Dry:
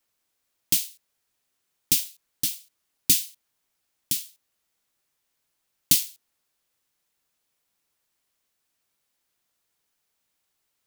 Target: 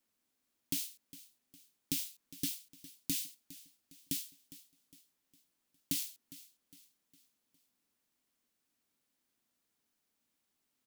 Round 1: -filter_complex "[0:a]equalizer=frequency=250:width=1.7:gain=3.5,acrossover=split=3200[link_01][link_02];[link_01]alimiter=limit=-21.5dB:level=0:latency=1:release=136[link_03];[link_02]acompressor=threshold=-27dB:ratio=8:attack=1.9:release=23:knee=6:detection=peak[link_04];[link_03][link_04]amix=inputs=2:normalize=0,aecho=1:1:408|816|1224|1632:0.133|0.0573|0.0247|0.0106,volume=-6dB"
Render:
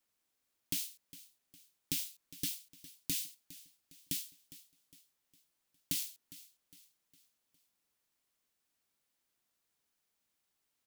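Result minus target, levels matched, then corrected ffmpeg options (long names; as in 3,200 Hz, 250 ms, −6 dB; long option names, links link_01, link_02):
250 Hz band −4.5 dB
-filter_complex "[0:a]equalizer=frequency=250:width=1.7:gain=12.5,acrossover=split=3200[link_01][link_02];[link_01]alimiter=limit=-21.5dB:level=0:latency=1:release=136[link_03];[link_02]acompressor=threshold=-27dB:ratio=8:attack=1.9:release=23:knee=6:detection=peak[link_04];[link_03][link_04]amix=inputs=2:normalize=0,aecho=1:1:408|816|1224|1632:0.133|0.0573|0.0247|0.0106,volume=-6dB"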